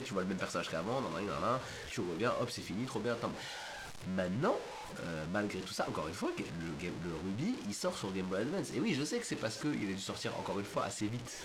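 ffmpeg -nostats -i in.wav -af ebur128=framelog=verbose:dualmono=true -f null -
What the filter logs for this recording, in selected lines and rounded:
Integrated loudness:
  I:         -34.7 LUFS
  Threshold: -44.7 LUFS
Loudness range:
  LRA:         1.4 LU
  Threshold: -54.8 LUFS
  LRA low:   -35.5 LUFS
  LRA high:  -34.1 LUFS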